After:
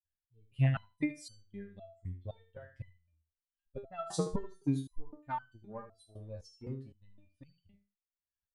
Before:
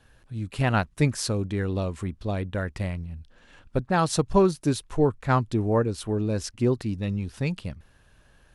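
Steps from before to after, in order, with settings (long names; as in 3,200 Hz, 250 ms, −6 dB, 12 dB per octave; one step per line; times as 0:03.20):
spectral dynamics exaggerated over time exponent 2
transient designer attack +12 dB, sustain 0 dB
on a send: repeating echo 75 ms, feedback 16%, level −10.5 dB
on the sum: step-sequenced resonator 3.9 Hz 90–1,500 Hz
level −3.5 dB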